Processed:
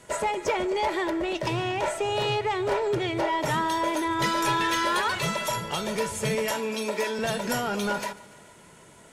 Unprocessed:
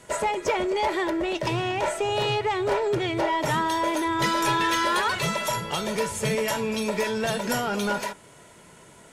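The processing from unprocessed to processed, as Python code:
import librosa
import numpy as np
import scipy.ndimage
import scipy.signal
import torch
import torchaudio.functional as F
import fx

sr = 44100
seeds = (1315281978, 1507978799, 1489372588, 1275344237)

p1 = fx.steep_highpass(x, sr, hz=220.0, slope=36, at=(6.51, 7.19))
p2 = p1 + fx.echo_feedback(p1, sr, ms=144, feedback_pct=59, wet_db=-21.0, dry=0)
y = p2 * librosa.db_to_amplitude(-1.5)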